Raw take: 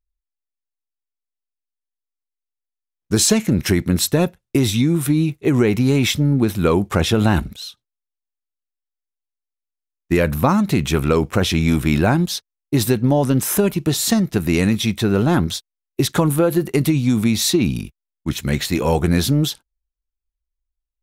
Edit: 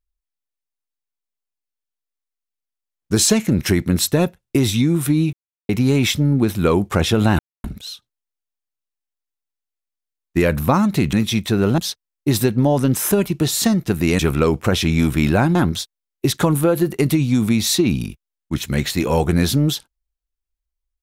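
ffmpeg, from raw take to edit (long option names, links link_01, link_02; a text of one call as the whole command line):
ffmpeg -i in.wav -filter_complex "[0:a]asplit=8[link_01][link_02][link_03][link_04][link_05][link_06][link_07][link_08];[link_01]atrim=end=5.33,asetpts=PTS-STARTPTS,afade=type=out:start_time=5.326:duration=0.004:curve=hsin[link_09];[link_02]atrim=start=5.33:end=5.69,asetpts=PTS-STARTPTS,volume=0[link_10];[link_03]atrim=start=5.69:end=7.39,asetpts=PTS-STARTPTS,afade=type=in:duration=0.004:curve=hsin,afade=type=out:start_time=1.696:duration=0.004:curve=hsin,apad=pad_dur=0.25[link_11];[link_04]atrim=start=7.39:end=10.882,asetpts=PTS-STARTPTS,afade=type=in:duration=0.004:curve=hsin[link_12];[link_05]atrim=start=14.648:end=15.302[link_13];[link_06]atrim=start=12.238:end=14.652[link_14];[link_07]atrim=start=10.878:end=12.242[link_15];[link_08]atrim=start=15.298[link_16];[link_09][link_10][link_11][link_12]concat=n=4:v=0:a=1[link_17];[link_17][link_13]acrossfade=duration=0.004:curve1=hsin:curve2=hsin[link_18];[link_18][link_14]acrossfade=duration=0.004:curve1=hsin:curve2=hsin[link_19];[link_19][link_15]acrossfade=duration=0.004:curve1=hsin:curve2=hsin[link_20];[link_20][link_16]acrossfade=duration=0.004:curve1=hsin:curve2=hsin" out.wav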